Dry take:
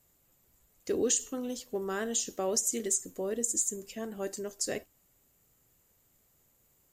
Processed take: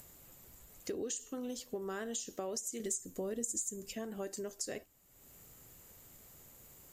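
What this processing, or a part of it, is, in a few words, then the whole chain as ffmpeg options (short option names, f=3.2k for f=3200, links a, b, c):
upward and downward compression: -filter_complex "[0:a]acompressor=mode=upward:threshold=-46dB:ratio=2.5,acompressor=threshold=-37dB:ratio=6,asettb=1/sr,asplit=3[a][b][c];[a]atrim=end=2.804[d];[b]atrim=start=2.8:end=3.93,asetpts=PTS-STARTPTS,afade=t=in:d=0.004:c=qsin,afade=t=out:st=1.126:d=0.004:c=qsin,bass=f=250:g=6,treble=f=4k:g=3[e];[c]atrim=start=3.926[f];[d][e]acrossfade=d=0.004:c1=hsin:c2=qsin[g];[g][f]acrossfade=d=0.004:c1=qsin:c2=hsin"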